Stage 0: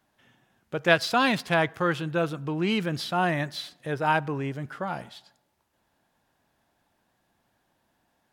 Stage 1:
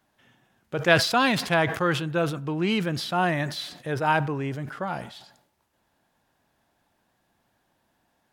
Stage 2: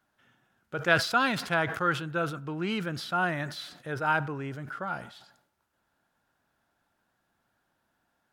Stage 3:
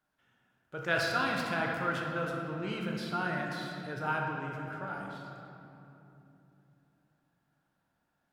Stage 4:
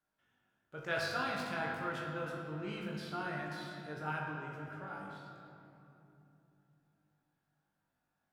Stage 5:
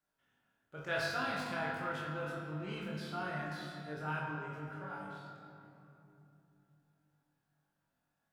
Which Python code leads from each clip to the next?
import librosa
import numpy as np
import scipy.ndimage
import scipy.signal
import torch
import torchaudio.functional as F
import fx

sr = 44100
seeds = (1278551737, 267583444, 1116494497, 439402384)

y1 = fx.sustainer(x, sr, db_per_s=87.0)
y1 = F.gain(torch.from_numpy(y1), 1.0).numpy()
y2 = fx.peak_eq(y1, sr, hz=1400.0, db=10.0, octaves=0.32)
y2 = F.gain(torch.from_numpy(y2), -6.5).numpy()
y3 = fx.room_shoebox(y2, sr, seeds[0], volume_m3=140.0, walls='hard', distance_m=0.47)
y3 = F.gain(torch.from_numpy(y3), -8.0).numpy()
y4 = fx.room_flutter(y3, sr, wall_m=3.4, rt60_s=0.23)
y4 = F.gain(torch.from_numpy(y4), -7.0).numpy()
y5 = fx.doubler(y4, sr, ms=27.0, db=-3.5)
y5 = F.gain(torch.from_numpy(y5), -1.5).numpy()